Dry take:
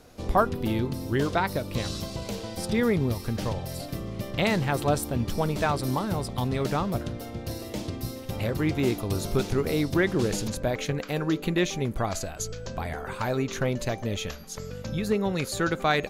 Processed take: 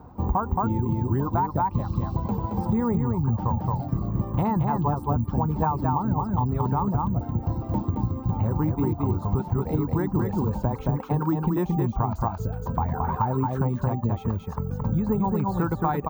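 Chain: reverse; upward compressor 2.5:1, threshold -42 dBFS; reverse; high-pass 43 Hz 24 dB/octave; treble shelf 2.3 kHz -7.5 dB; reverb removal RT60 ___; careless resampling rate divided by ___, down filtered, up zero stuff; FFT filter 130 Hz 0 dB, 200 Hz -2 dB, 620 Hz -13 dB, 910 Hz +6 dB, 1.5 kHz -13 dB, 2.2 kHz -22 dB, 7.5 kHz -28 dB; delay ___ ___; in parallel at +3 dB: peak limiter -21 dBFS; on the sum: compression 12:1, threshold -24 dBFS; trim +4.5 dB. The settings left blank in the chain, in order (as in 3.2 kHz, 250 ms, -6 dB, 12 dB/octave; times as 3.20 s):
0.93 s, 2×, 222 ms, -4 dB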